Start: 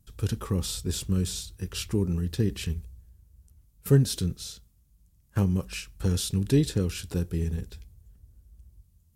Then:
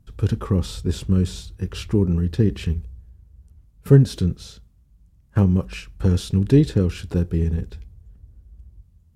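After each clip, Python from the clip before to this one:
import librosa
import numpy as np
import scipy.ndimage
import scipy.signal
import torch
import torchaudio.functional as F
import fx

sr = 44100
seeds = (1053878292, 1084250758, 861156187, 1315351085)

y = fx.lowpass(x, sr, hz=1600.0, slope=6)
y = y * 10.0 ** (7.5 / 20.0)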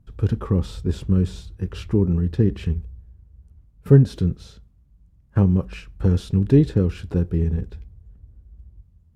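y = fx.high_shelf(x, sr, hz=2900.0, db=-10.0)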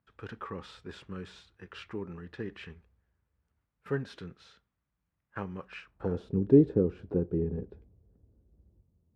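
y = fx.filter_sweep_bandpass(x, sr, from_hz=1700.0, to_hz=410.0, start_s=5.73, end_s=6.31, q=1.2)
y = y * 10.0 ** (-1.0 / 20.0)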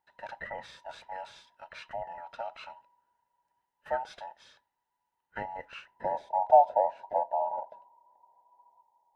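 y = fx.band_invert(x, sr, width_hz=1000)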